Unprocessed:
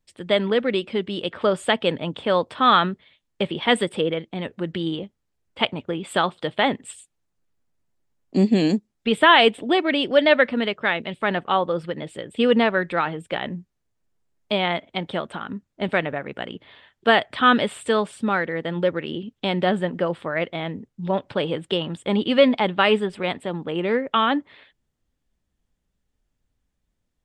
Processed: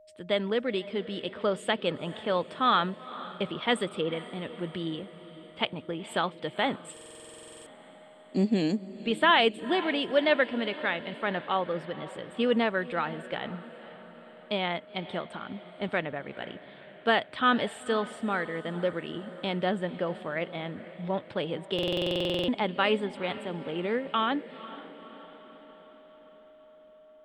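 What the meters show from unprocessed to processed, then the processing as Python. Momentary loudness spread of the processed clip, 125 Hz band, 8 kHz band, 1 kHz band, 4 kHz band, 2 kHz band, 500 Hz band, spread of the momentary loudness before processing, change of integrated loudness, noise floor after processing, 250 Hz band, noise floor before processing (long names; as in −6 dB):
18 LU, −7.0 dB, −6.5 dB, −7.5 dB, −7.0 dB, −7.5 dB, −7.5 dB, 13 LU, −7.5 dB, −53 dBFS, −7.5 dB, −76 dBFS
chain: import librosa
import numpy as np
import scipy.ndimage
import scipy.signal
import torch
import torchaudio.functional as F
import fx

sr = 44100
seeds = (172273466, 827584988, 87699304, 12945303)

y = x + 10.0 ** (-46.0 / 20.0) * np.sin(2.0 * np.pi * 620.0 * np.arange(len(x)) / sr)
y = fx.echo_diffused(y, sr, ms=490, feedback_pct=57, wet_db=-16)
y = fx.buffer_glitch(y, sr, at_s=(6.92, 21.74), block=2048, repeats=15)
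y = y * 10.0 ** (-7.5 / 20.0)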